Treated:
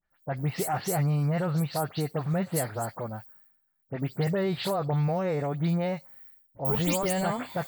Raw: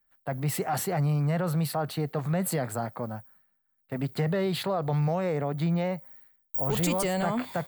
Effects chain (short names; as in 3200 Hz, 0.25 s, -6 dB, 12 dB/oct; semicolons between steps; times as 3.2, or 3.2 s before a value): spectral delay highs late, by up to 0.104 s